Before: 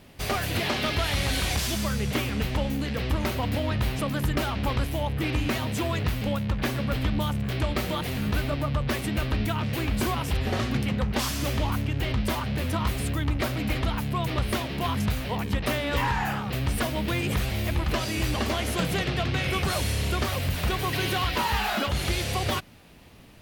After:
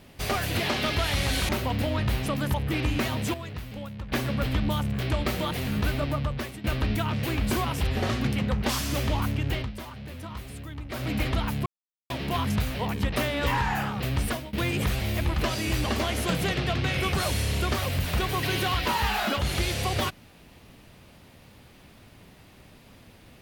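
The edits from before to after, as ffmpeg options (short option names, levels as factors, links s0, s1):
-filter_complex "[0:a]asplit=11[s0][s1][s2][s3][s4][s5][s6][s7][s8][s9][s10];[s0]atrim=end=1.492[s11];[s1]atrim=start=3.218:end=4.272[s12];[s2]atrim=start=5.038:end=5.842[s13];[s3]atrim=start=5.838:end=6.622,asetpts=PTS-STARTPTS,volume=0.316[s14];[s4]atrim=start=6.618:end=9.14,asetpts=PTS-STARTPTS,afade=t=out:st=2.012:d=0.51:silence=0.158489[s15];[s5]atrim=start=9.14:end=12.21,asetpts=PTS-STARTPTS,afade=t=in:d=0.004:c=hsin:silence=0.158489,afade=t=out:st=2.89:d=0.18:silence=0.266073[s16];[s6]atrim=start=12.21:end=13.4,asetpts=PTS-STARTPTS,volume=0.266[s17];[s7]atrim=start=13.4:end=14.16,asetpts=PTS-STARTPTS,afade=t=in:d=0.18:silence=0.266073,afade=t=out:st=0.756:d=0.004:c=hsin[s18];[s8]atrim=start=14.16:end=14.6,asetpts=PTS-STARTPTS,volume=0[s19];[s9]atrim=start=14.6:end=17.03,asetpts=PTS-STARTPTS,afade=t=in:d=0.004:c=hsin,afade=t=out:st=2.14:d=0.29:silence=0.0749894[s20];[s10]atrim=start=17.03,asetpts=PTS-STARTPTS,afade=t=in:d=0.004:c=hsin:silence=0.0749894[s21];[s11][s12]acrossfade=d=0.004:c1=hsin:c2=hsin[s22];[s22][s13]acrossfade=d=0.004:c1=hsin:c2=hsin[s23];[s23][s14]acrossfade=d=0.004:c1=hsin:c2=hsin[s24];[s15][s16][s17][s18][s19][s20][s21]concat=n=7:v=0:a=1[s25];[s24][s25]acrossfade=d=0.004:c1=hsin:c2=hsin"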